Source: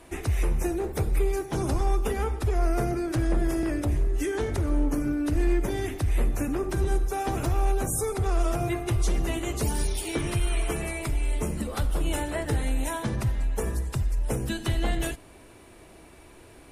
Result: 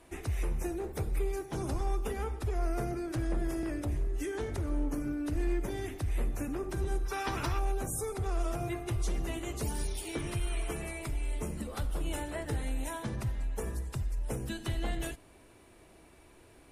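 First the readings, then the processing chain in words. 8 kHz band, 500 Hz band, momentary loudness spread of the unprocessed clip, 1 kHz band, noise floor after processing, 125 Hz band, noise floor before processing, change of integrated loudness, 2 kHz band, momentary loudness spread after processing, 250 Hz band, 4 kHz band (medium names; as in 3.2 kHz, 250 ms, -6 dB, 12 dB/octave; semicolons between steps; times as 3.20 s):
-7.5 dB, -7.5 dB, 3 LU, -7.0 dB, -58 dBFS, -7.5 dB, -50 dBFS, -7.5 dB, -6.5 dB, 4 LU, -7.5 dB, -7.0 dB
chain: time-frequency box 7.05–7.59 s, 860–6000 Hz +9 dB; trim -7.5 dB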